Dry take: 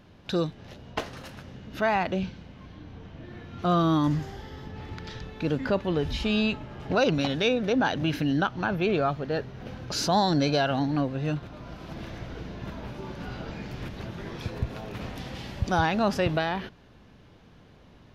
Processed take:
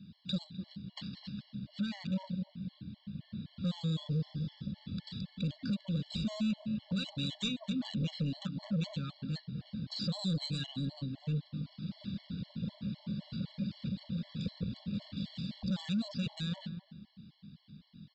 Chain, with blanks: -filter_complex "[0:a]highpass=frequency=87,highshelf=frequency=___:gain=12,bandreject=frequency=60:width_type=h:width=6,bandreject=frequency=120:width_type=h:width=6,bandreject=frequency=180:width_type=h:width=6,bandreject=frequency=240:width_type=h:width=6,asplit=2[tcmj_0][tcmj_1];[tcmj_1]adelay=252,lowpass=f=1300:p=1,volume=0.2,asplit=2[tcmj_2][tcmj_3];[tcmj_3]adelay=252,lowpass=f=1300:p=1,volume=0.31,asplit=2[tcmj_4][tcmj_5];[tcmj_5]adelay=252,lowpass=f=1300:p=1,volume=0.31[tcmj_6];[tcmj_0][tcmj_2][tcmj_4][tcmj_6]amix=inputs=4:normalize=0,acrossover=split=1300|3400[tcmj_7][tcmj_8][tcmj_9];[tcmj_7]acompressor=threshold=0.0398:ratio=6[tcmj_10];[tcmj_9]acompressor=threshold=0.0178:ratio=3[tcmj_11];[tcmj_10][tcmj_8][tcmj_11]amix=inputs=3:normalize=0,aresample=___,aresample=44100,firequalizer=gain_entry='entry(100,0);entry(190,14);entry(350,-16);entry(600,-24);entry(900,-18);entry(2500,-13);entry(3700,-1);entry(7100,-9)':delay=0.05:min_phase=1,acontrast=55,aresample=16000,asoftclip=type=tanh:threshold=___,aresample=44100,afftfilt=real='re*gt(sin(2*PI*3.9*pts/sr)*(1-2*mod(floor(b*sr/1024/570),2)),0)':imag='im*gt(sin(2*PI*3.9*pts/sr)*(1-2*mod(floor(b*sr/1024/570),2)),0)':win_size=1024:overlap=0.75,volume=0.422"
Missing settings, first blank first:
2800, 11025, 0.0944